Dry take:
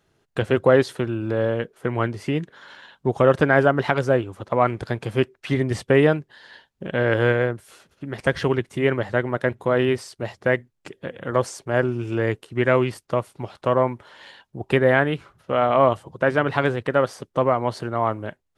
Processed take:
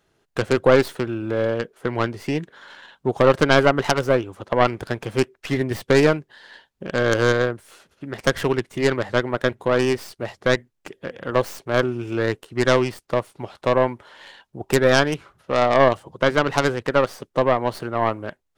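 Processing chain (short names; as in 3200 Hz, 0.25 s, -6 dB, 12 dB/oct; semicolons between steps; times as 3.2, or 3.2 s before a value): tracing distortion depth 0.33 ms; bell 110 Hz -4.5 dB 1.8 oct; gain +1 dB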